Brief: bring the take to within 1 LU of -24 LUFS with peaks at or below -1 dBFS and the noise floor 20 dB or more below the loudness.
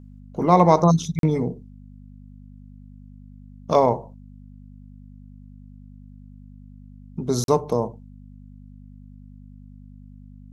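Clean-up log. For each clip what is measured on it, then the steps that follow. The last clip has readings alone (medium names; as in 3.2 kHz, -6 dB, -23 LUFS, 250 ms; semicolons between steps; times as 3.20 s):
dropouts 2; longest dropout 42 ms; hum 50 Hz; highest harmonic 250 Hz; hum level -41 dBFS; loudness -21.0 LUFS; peak level -2.0 dBFS; loudness target -24.0 LUFS
-> interpolate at 1.19/7.44 s, 42 ms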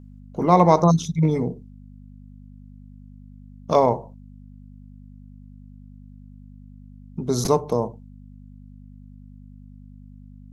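dropouts 0; hum 50 Hz; highest harmonic 250 Hz; hum level -41 dBFS
-> de-hum 50 Hz, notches 5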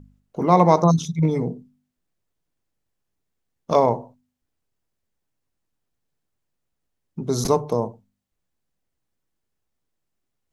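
hum not found; loudness -20.5 LUFS; peak level -2.0 dBFS; loudness target -24.0 LUFS
-> trim -3.5 dB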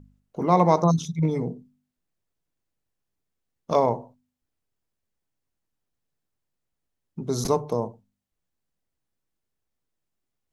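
loudness -24.0 LUFS; peak level -5.5 dBFS; noise floor -82 dBFS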